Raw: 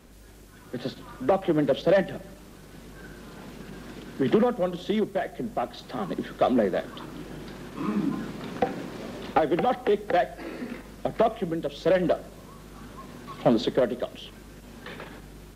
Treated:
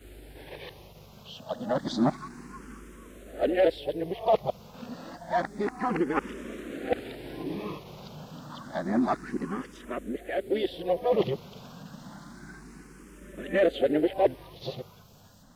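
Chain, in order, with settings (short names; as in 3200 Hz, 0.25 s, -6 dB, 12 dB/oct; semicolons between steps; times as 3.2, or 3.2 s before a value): whole clip reversed; harmoniser +5 st -12 dB; endless phaser +0.29 Hz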